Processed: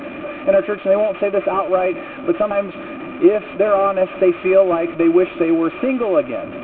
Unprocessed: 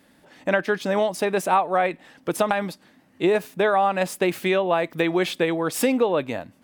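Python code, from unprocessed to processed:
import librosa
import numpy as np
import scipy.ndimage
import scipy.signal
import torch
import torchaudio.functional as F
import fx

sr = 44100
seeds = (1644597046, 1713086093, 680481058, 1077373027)

y = fx.delta_mod(x, sr, bps=16000, step_db=-26.5)
y = fx.small_body(y, sr, hz=(340.0, 580.0, 1200.0, 2400.0), ring_ms=45, db=17)
y = y * 10.0 ** (-5.0 / 20.0)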